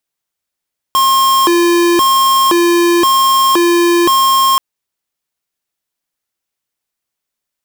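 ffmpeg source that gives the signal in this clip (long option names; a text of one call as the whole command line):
ffmpeg -f lavfi -i "aevalsrc='0.316*(2*lt(mod((707.5*t+362.5/0.96*(0.5-abs(mod(0.96*t,1)-0.5))),1),0.5)-1)':duration=3.63:sample_rate=44100" out.wav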